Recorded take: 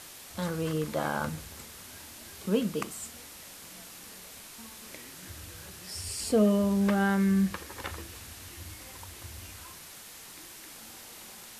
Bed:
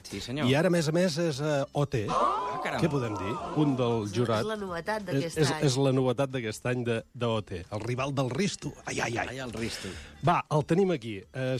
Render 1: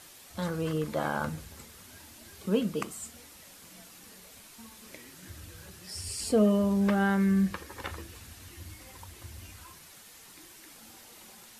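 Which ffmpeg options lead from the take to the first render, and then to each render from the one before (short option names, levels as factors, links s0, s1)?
-af "afftdn=nr=6:nf=-48"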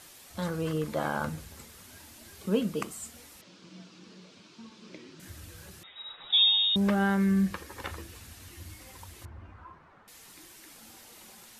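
-filter_complex "[0:a]asettb=1/sr,asplit=3[s0][s1][s2];[s0]atrim=end=3.414[s3];[s1]atrim=start=3.41:end=5.2,asetpts=PTS-STARTPTS,afade=t=in:d=0.004:c=qsin,afade=t=out:st=1.786:d=0.004:c=qsin,highpass=f=110:w=0.5412,highpass=f=110:w=1.3066,equalizer=f=180:t=q:w=4:g=9,equalizer=f=340:t=q:w=4:g=10,equalizer=f=760:t=q:w=4:g=-6,equalizer=f=1900:t=q:w=4:g=-7,lowpass=f=5400:w=0.5412,lowpass=f=5400:w=1.3066[s4];[s2]atrim=start=5.196[s5];[s3][s4]acrossfade=d=0.004:c1=hsin:c2=qsin[s6];[s6][s5]acrossfade=d=0.004:c1=qsin:c2=hsin,asettb=1/sr,asplit=3[s7][s8][s9];[s7]atrim=end=5.834[s10];[s8]atrim=start=5.83:end=6.76,asetpts=PTS-STARTPTS,afade=t=in:d=0.004:c=qsin,afade=t=out:st=0.926:d=0.004:c=qsin,lowpass=f=3300:t=q:w=0.5098,lowpass=f=3300:t=q:w=0.6013,lowpass=f=3300:t=q:w=0.9,lowpass=f=3300:t=q:w=2.563,afreqshift=-3900[s11];[s9]atrim=start=6.756[s12];[s10][s11]acrossfade=d=0.004:c1=hsin:c2=qsin[s13];[s13][s12]acrossfade=d=0.004:c1=qsin:c2=hsin,asettb=1/sr,asplit=3[s14][s15][s16];[s14]atrim=end=9.254[s17];[s15]atrim=start=9.25:end=10.08,asetpts=PTS-STARTPTS,afade=t=in:d=0.004:c=qsin,afade=t=out:st=0.826:d=0.004:c=qsin,lowpass=f=1200:t=q:w=1.7[s18];[s16]atrim=start=10.076[s19];[s17][s18]acrossfade=d=0.004:c1=hsin:c2=qsin[s20];[s20][s19]acrossfade=d=0.004:c1=qsin:c2=hsin"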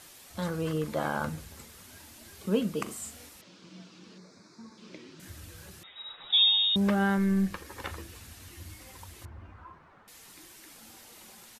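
-filter_complex "[0:a]asplit=3[s0][s1][s2];[s0]afade=t=out:st=2.86:d=0.02[s3];[s1]asplit=2[s4][s5];[s5]adelay=41,volume=0.668[s6];[s4][s6]amix=inputs=2:normalize=0,afade=t=in:st=2.86:d=0.02,afade=t=out:st=3.28:d=0.02[s7];[s2]afade=t=in:st=3.28:d=0.02[s8];[s3][s7][s8]amix=inputs=3:normalize=0,asettb=1/sr,asplit=3[s9][s10][s11];[s9]atrim=end=4.184[s12];[s10]atrim=start=4.18:end=4.78,asetpts=PTS-STARTPTS,afade=t=in:d=0.004:c=qsin,afade=t=out:st=0.596:d=0.004:c=qsin,asuperstop=centerf=3000:order=4:qfactor=1.5[s13];[s11]atrim=start=4.776[s14];[s12][s13]acrossfade=d=0.004:c1=hsin:c2=qsin[s15];[s15][s14]acrossfade=d=0.004:c1=qsin:c2=hsin,asettb=1/sr,asplit=3[s16][s17][s18];[s16]atrim=end=7.184[s19];[s17]atrim=start=7.18:end=7.65,asetpts=PTS-STARTPTS,afade=t=in:d=0.004:c=qsin,afade=t=out:st=0.466:d=0.004:c=qsin,aeval=exprs='if(lt(val(0),0),0.708*val(0),val(0))':c=same[s20];[s18]atrim=start=7.646[s21];[s19][s20]acrossfade=d=0.004:c1=hsin:c2=qsin[s22];[s22][s21]acrossfade=d=0.004:c1=qsin:c2=hsin"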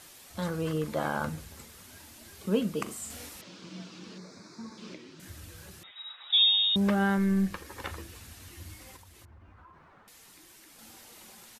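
-filter_complex "[0:a]asettb=1/sr,asplit=3[s0][s1][s2];[s0]atrim=end=3.104[s3];[s1]atrim=start=3.1:end=4.94,asetpts=PTS-STARTPTS,afade=t=in:d=0.004:c=qsin,afade=t=out:st=1.836:d=0.004:c=qsin,acontrast=39[s4];[s2]atrim=start=4.936[s5];[s3][s4]acrossfade=d=0.004:c1=hsin:c2=qsin[s6];[s6][s5]acrossfade=d=0.004:c1=qsin:c2=hsin,asettb=1/sr,asplit=3[s7][s8][s9];[s7]atrim=end=5.914[s10];[s8]atrim=start=5.91:end=6.65,asetpts=PTS-STARTPTS,afade=t=in:d=0.004:c=qsin,afade=t=out:st=0.736:d=0.004:c=qsin,highpass=1000[s11];[s9]atrim=start=6.646[s12];[s10][s11]acrossfade=d=0.004:c1=hsin:c2=qsin[s13];[s13][s12]acrossfade=d=0.004:c1=qsin:c2=hsin,asettb=1/sr,asplit=3[s14][s15][s16];[s14]atrim=end=8.964[s17];[s15]atrim=start=8.96:end=10.79,asetpts=PTS-STARTPTS,afade=t=in:d=0.004:c=qsin,afade=t=out:st=1.826:d=0.004:c=qsin,acompressor=threshold=0.00316:ratio=6:attack=3.2:release=140:knee=1:detection=peak[s18];[s16]atrim=start=10.786[s19];[s17][s18]acrossfade=d=0.004:c1=hsin:c2=qsin[s20];[s20][s19]acrossfade=d=0.004:c1=qsin:c2=hsin"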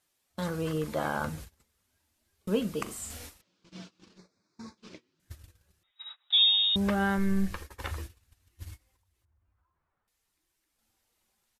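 -af "agate=range=0.0562:threshold=0.00708:ratio=16:detection=peak,asubboost=boost=4:cutoff=85"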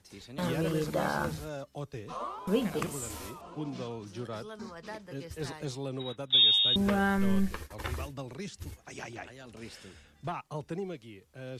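-filter_complex "[1:a]volume=0.251[s0];[0:a][s0]amix=inputs=2:normalize=0"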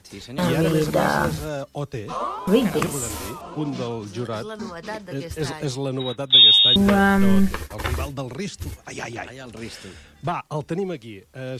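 -af "volume=3.35"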